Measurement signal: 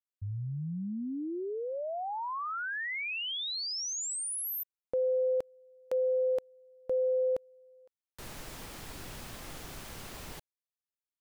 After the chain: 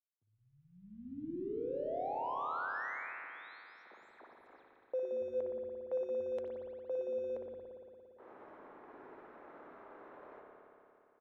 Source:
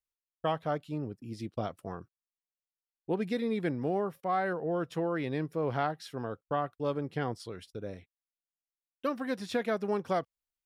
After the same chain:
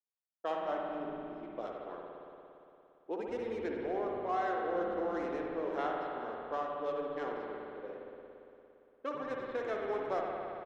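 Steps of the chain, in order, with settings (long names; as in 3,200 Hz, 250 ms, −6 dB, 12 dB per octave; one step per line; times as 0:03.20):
running median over 15 samples
notch filter 4,600 Hz, Q 6
low-pass that shuts in the quiet parts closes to 930 Hz, open at −27.5 dBFS
high-pass filter 300 Hz 24 dB per octave
low-shelf EQ 420 Hz −3 dB
flanger 0.63 Hz, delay 2 ms, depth 1.3 ms, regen −87%
high-frequency loss of the air 63 metres
echo with shifted repeats 92 ms, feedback 38%, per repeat −140 Hz, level −14.5 dB
spring reverb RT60 3 s, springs 57 ms, chirp 25 ms, DRR −1 dB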